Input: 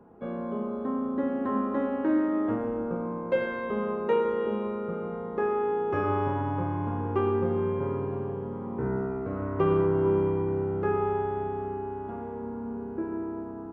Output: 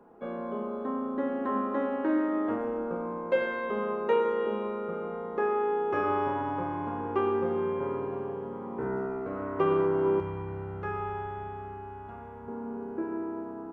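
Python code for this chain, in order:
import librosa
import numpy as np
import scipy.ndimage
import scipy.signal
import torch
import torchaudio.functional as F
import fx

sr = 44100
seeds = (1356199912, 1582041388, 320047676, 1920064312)

y = fx.peak_eq(x, sr, hz=fx.steps((0.0, 86.0), (10.2, 300.0), (12.48, 68.0)), db=-14.0, octaves=2.4)
y = y * 10.0 ** (1.5 / 20.0)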